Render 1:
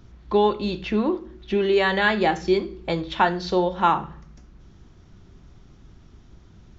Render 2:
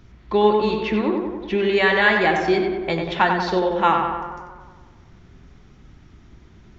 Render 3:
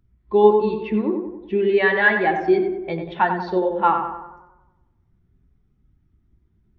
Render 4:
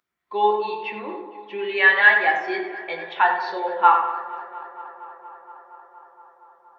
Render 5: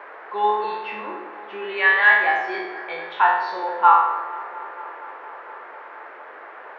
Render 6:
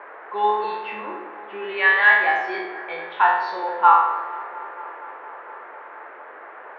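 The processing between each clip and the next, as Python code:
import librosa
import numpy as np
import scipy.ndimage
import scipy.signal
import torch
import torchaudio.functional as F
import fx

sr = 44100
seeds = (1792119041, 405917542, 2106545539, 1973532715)

y1 = fx.peak_eq(x, sr, hz=2100.0, db=6.5, octaves=0.78)
y1 = fx.echo_tape(y1, sr, ms=94, feedback_pct=71, wet_db=-3, lp_hz=2400.0, drive_db=5.0, wow_cents=28)
y2 = fx.spectral_expand(y1, sr, expansion=1.5)
y3 = scipy.signal.sosfilt(scipy.signal.butter(2, 970.0, 'highpass', fs=sr, output='sos'), y2)
y3 = fx.echo_tape(y3, sr, ms=234, feedback_pct=86, wet_db=-17.5, lp_hz=3300.0, drive_db=5.0, wow_cents=13)
y3 = fx.room_shoebox(y3, sr, seeds[0], volume_m3=120.0, walls='furnished', distance_m=0.79)
y3 = F.gain(torch.from_numpy(y3), 3.5).numpy()
y4 = fx.spec_trails(y3, sr, decay_s=0.77)
y4 = fx.peak_eq(y4, sr, hz=1100.0, db=6.5, octaves=0.84)
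y4 = fx.dmg_noise_band(y4, sr, seeds[1], low_hz=380.0, high_hz=1800.0, level_db=-36.0)
y4 = F.gain(torch.from_numpy(y4), -5.0).numpy()
y5 = fx.env_lowpass(y4, sr, base_hz=2100.0, full_db=-16.5)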